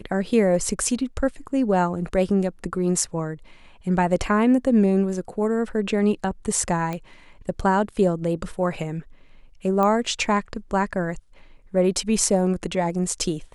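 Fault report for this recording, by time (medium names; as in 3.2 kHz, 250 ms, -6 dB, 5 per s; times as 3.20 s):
6.93 s: pop -16 dBFS
9.83 s: pop -12 dBFS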